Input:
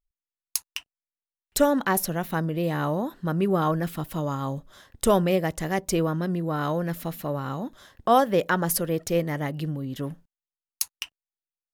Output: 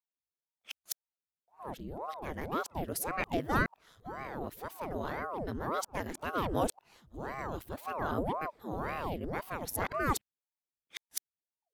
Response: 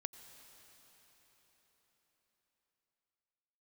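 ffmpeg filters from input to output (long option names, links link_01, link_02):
-af "areverse,aeval=exprs='val(0)*sin(2*PI*500*n/s+500*0.9/1.9*sin(2*PI*1.9*n/s))':channel_layout=same,volume=-7.5dB"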